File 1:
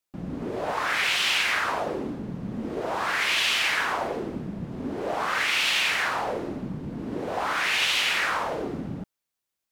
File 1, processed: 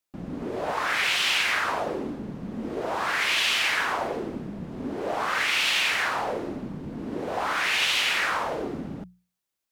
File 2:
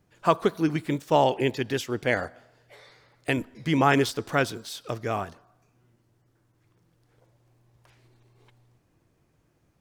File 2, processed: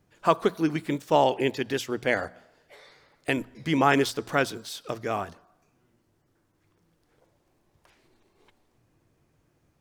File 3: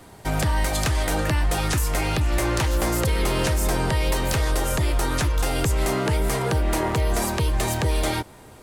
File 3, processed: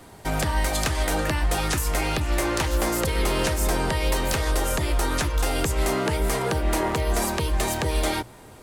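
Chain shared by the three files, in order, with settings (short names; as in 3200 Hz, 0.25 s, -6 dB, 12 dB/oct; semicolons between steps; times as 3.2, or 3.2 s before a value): dynamic EQ 110 Hz, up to -6 dB, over -40 dBFS, Q 1.4; notches 60/120/180 Hz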